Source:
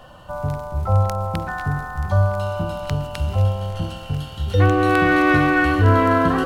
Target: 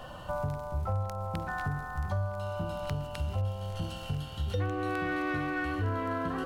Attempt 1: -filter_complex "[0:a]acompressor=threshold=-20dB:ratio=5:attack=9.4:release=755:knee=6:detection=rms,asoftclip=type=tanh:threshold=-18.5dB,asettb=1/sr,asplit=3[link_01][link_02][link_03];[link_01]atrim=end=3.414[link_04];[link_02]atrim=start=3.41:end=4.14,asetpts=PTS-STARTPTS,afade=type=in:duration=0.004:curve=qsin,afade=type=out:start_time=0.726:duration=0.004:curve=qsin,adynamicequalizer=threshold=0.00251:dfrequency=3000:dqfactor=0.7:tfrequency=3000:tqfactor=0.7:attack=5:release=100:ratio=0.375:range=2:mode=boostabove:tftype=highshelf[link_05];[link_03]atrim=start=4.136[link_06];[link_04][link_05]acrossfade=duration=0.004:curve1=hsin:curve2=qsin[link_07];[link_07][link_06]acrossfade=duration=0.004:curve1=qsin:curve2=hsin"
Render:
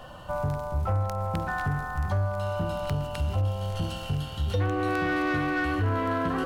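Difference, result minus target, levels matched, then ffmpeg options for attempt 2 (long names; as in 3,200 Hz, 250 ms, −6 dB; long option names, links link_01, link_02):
downward compressor: peak gain reduction −6.5 dB
-filter_complex "[0:a]acompressor=threshold=-28dB:ratio=5:attack=9.4:release=755:knee=6:detection=rms,asoftclip=type=tanh:threshold=-18.5dB,asettb=1/sr,asplit=3[link_01][link_02][link_03];[link_01]atrim=end=3.414[link_04];[link_02]atrim=start=3.41:end=4.14,asetpts=PTS-STARTPTS,afade=type=in:duration=0.004:curve=qsin,afade=type=out:start_time=0.726:duration=0.004:curve=qsin,adynamicequalizer=threshold=0.00251:dfrequency=3000:dqfactor=0.7:tfrequency=3000:tqfactor=0.7:attack=5:release=100:ratio=0.375:range=2:mode=boostabove:tftype=highshelf[link_05];[link_03]atrim=start=4.136[link_06];[link_04][link_05]acrossfade=duration=0.004:curve1=hsin:curve2=qsin[link_07];[link_07][link_06]acrossfade=duration=0.004:curve1=qsin:curve2=hsin"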